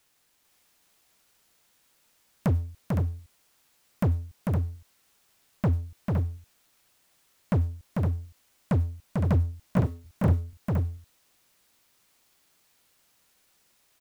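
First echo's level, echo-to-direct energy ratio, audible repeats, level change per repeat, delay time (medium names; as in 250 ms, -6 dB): -3.5 dB, -1.5 dB, 2, no regular repeats, 445 ms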